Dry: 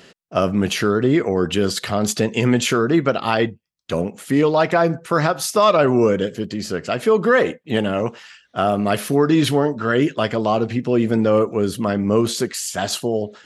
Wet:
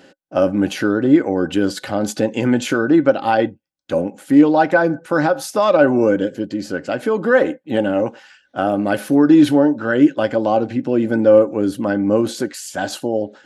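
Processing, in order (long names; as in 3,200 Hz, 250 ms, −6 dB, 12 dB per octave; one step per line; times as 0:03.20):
hollow resonant body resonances 300/550/790/1,500 Hz, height 15 dB, ringing for 55 ms
level −5.5 dB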